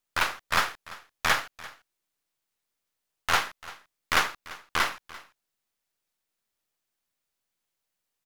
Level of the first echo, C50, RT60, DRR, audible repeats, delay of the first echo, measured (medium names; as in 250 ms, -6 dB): -19.0 dB, no reverb, no reverb, no reverb, 1, 342 ms